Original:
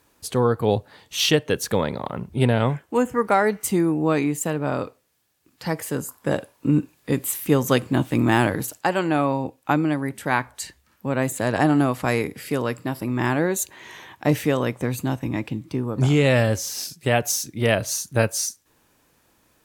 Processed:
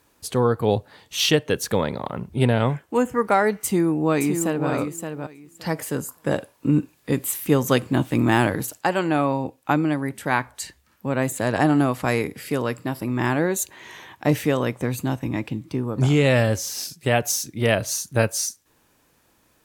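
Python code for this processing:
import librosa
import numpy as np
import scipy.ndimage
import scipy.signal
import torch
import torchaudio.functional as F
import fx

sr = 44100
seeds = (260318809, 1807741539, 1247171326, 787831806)

y = fx.echo_throw(x, sr, start_s=3.62, length_s=1.07, ms=570, feedback_pct=15, wet_db=-6.5)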